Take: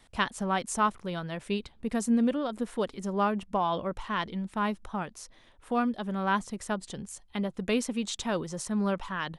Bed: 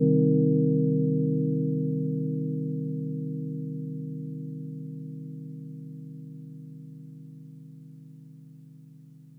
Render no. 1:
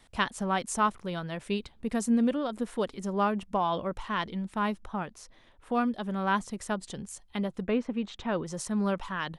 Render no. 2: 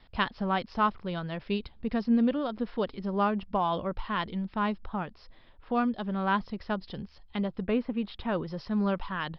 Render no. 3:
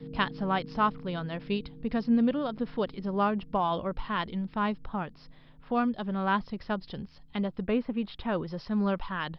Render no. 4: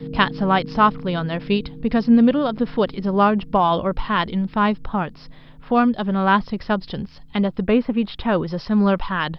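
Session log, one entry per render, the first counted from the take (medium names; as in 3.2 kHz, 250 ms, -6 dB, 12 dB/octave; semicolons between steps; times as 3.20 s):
4.79–5.74 s: treble shelf 4.8 kHz -6.5 dB; 7.62–8.45 s: low-pass 1.7 kHz -> 2.9 kHz
Chebyshev low-pass 5.2 kHz, order 8; bass shelf 120 Hz +7 dB
add bed -21 dB
trim +10.5 dB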